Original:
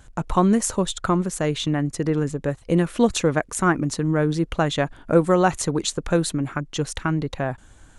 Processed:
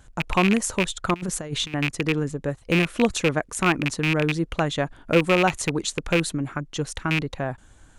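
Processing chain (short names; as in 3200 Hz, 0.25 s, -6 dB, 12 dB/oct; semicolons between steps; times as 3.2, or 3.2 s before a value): rattling part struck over -23 dBFS, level -9 dBFS; 1.14–1.74 negative-ratio compressor -26 dBFS, ratio -0.5; gain -2.5 dB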